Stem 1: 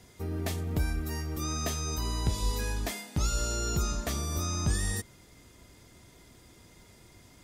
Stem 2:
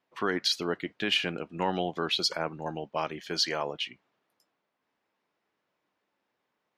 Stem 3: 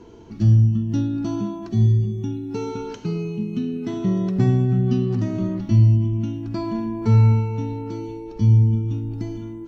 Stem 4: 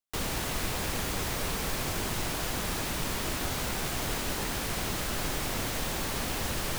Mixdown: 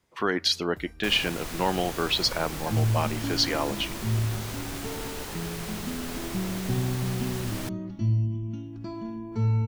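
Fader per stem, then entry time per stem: −18.5, +3.0, −10.0, −4.5 decibels; 0.00, 0.00, 2.30, 0.90 seconds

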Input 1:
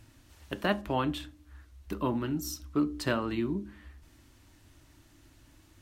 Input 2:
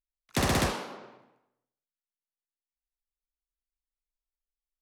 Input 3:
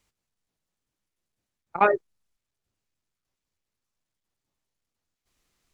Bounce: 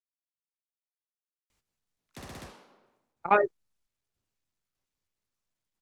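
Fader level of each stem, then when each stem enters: muted, −18.5 dB, −2.5 dB; muted, 1.80 s, 1.50 s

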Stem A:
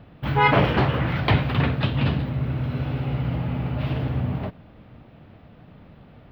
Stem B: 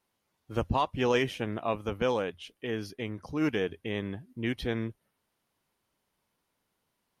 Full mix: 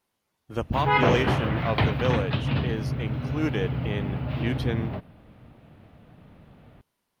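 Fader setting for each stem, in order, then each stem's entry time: −3.5, +1.0 decibels; 0.50, 0.00 seconds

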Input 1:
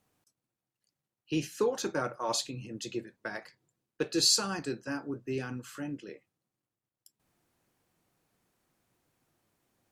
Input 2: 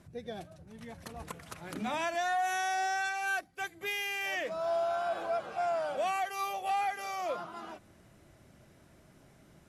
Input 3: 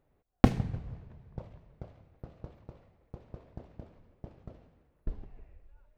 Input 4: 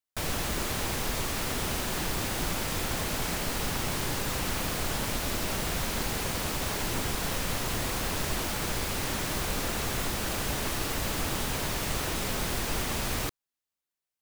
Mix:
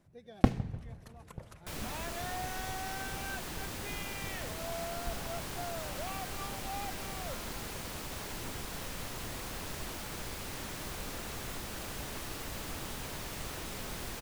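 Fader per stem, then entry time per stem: muted, −10.5 dB, −4.0 dB, −10.0 dB; muted, 0.00 s, 0.00 s, 1.50 s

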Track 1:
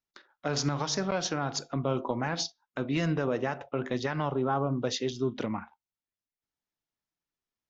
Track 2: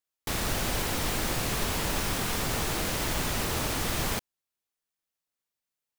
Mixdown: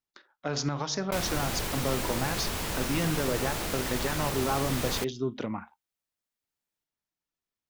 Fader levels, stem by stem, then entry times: −1.0, −3.0 decibels; 0.00, 0.85 seconds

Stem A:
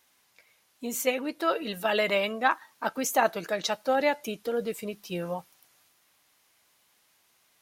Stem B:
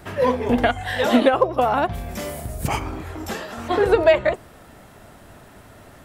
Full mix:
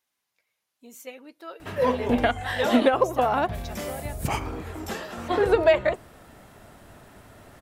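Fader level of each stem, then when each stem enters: −14.0, −3.5 decibels; 0.00, 1.60 seconds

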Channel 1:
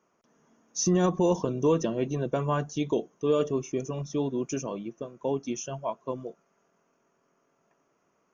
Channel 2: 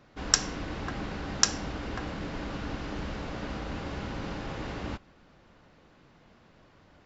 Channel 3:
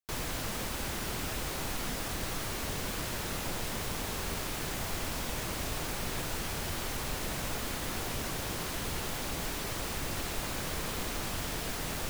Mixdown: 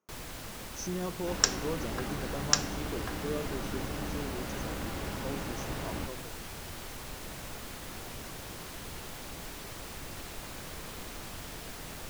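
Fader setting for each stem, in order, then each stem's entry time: −12.0, −2.0, −7.0 decibels; 0.00, 1.10, 0.00 seconds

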